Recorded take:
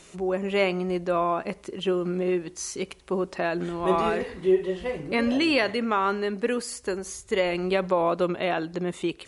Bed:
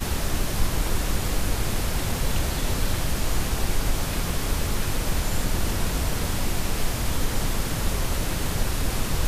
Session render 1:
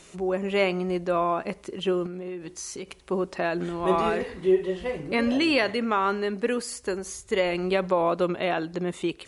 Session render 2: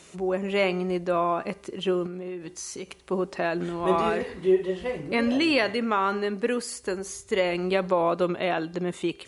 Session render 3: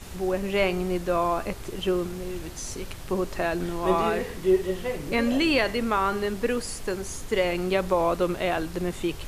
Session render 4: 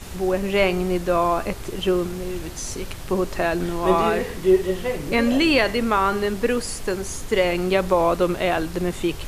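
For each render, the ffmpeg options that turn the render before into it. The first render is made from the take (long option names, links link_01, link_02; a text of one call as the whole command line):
ffmpeg -i in.wav -filter_complex "[0:a]asettb=1/sr,asplit=3[link_01][link_02][link_03];[link_01]atrim=end=2.064[link_04];[link_02]atrim=start=2.06:end=3.02,asetpts=PTS-STARTPTS,afade=type=in:duration=0.004:curve=qsin,afade=type=out:start_time=0.956:duration=0.004:curve=qsin,acompressor=threshold=-32dB:ratio=6:attack=3.2:release=140:knee=1:detection=peak[link_05];[link_03]atrim=start=3.016[link_06];[link_04][link_05]acrossfade=duration=0.004:curve1=hsin:curve2=qsin[link_07];[link_07][link_06]acrossfade=duration=0.004:curve1=qsin:curve2=hsin" out.wav
ffmpeg -i in.wav -af "highpass=56,bandreject=frequency=397.5:width_type=h:width=4,bandreject=frequency=795:width_type=h:width=4,bandreject=frequency=1192.5:width_type=h:width=4,bandreject=frequency=1590:width_type=h:width=4,bandreject=frequency=1987.5:width_type=h:width=4,bandreject=frequency=2385:width_type=h:width=4,bandreject=frequency=2782.5:width_type=h:width=4,bandreject=frequency=3180:width_type=h:width=4,bandreject=frequency=3577.5:width_type=h:width=4,bandreject=frequency=3975:width_type=h:width=4,bandreject=frequency=4372.5:width_type=h:width=4,bandreject=frequency=4770:width_type=h:width=4,bandreject=frequency=5167.5:width_type=h:width=4,bandreject=frequency=5565:width_type=h:width=4,bandreject=frequency=5962.5:width_type=h:width=4,bandreject=frequency=6360:width_type=h:width=4,bandreject=frequency=6757.5:width_type=h:width=4,bandreject=frequency=7155:width_type=h:width=4,bandreject=frequency=7552.5:width_type=h:width=4,bandreject=frequency=7950:width_type=h:width=4,bandreject=frequency=8347.5:width_type=h:width=4,bandreject=frequency=8745:width_type=h:width=4,bandreject=frequency=9142.5:width_type=h:width=4,bandreject=frequency=9540:width_type=h:width=4,bandreject=frequency=9937.5:width_type=h:width=4,bandreject=frequency=10335:width_type=h:width=4,bandreject=frequency=10732.5:width_type=h:width=4,bandreject=frequency=11130:width_type=h:width=4,bandreject=frequency=11527.5:width_type=h:width=4,bandreject=frequency=11925:width_type=h:width=4,bandreject=frequency=12322.5:width_type=h:width=4,bandreject=frequency=12720:width_type=h:width=4,bandreject=frequency=13117.5:width_type=h:width=4,bandreject=frequency=13515:width_type=h:width=4,bandreject=frequency=13912.5:width_type=h:width=4" out.wav
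ffmpeg -i in.wav -i bed.wav -filter_complex "[1:a]volume=-14.5dB[link_01];[0:a][link_01]amix=inputs=2:normalize=0" out.wav
ffmpeg -i in.wav -af "volume=4.5dB" out.wav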